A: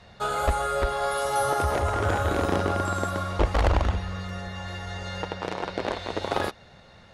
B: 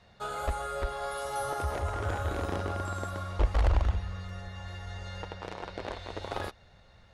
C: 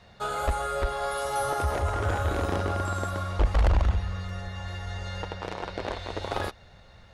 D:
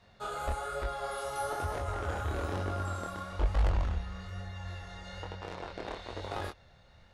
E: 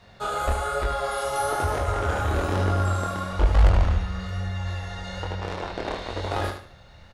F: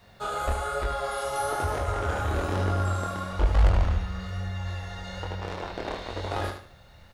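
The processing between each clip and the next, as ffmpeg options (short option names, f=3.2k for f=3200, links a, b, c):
-af "asubboost=boost=3:cutoff=100,volume=-8.5dB"
-af "asoftclip=type=tanh:threshold=-19.5dB,volume=5.5dB"
-af "flanger=delay=20:depth=7.9:speed=1.1,volume=-4dB"
-af "aecho=1:1:75|150|225|300:0.422|0.122|0.0355|0.0103,volume=9dB"
-af "acrusher=bits=10:mix=0:aa=0.000001,volume=-3dB"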